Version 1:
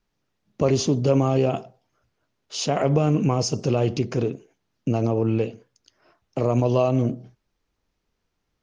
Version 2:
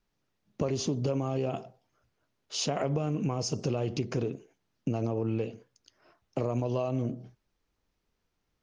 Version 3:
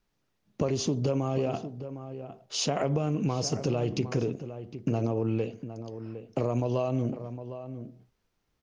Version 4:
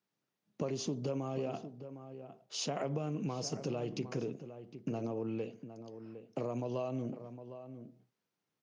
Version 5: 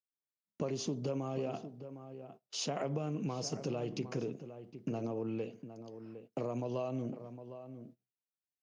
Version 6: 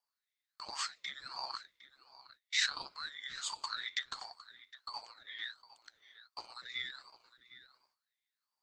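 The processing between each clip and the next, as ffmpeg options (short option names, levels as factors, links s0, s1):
-af "acompressor=threshold=0.0708:ratio=6,volume=0.708"
-filter_complex "[0:a]asplit=2[s0][s1];[s1]adelay=758,volume=0.282,highshelf=f=4000:g=-17.1[s2];[s0][s2]amix=inputs=2:normalize=0,volume=1.26"
-af "highpass=f=130:w=0.5412,highpass=f=130:w=1.3066,volume=0.398"
-af "agate=range=0.0631:threshold=0.002:ratio=16:detection=peak"
-af "highpass=f=2800:t=q:w=13,aeval=exprs='val(0)*sin(2*PI*1300*n/s+1300*0.45/1.4*sin(2*PI*1.4*n/s))':c=same,volume=1.26"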